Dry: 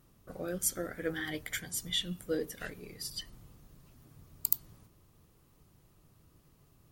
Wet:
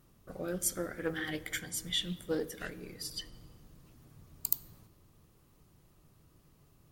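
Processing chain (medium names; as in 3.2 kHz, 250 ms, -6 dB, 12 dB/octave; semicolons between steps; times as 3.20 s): on a send at -16 dB: reverberation RT60 2.3 s, pre-delay 3 ms; on the sum: loudspeaker Doppler distortion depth 0.14 ms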